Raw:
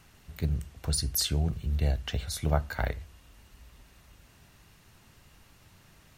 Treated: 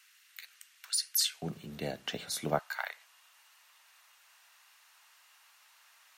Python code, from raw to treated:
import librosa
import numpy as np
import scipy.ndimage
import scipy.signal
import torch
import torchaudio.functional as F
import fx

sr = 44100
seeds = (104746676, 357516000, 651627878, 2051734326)

y = fx.highpass(x, sr, hz=fx.steps((0.0, 1500.0), (1.42, 190.0), (2.59, 880.0)), slope=24)